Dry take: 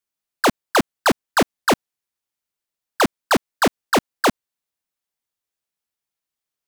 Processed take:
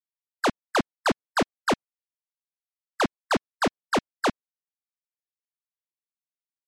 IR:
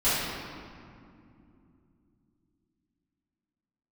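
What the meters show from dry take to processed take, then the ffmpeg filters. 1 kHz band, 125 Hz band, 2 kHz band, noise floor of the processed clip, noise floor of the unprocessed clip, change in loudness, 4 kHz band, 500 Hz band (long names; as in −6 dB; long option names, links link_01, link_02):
−6.5 dB, −6.5 dB, −6.5 dB, below −85 dBFS, below −85 dBFS, −7.0 dB, −7.5 dB, −6.5 dB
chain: -af "afftdn=noise_reduction=21:noise_floor=-31,volume=-6.5dB"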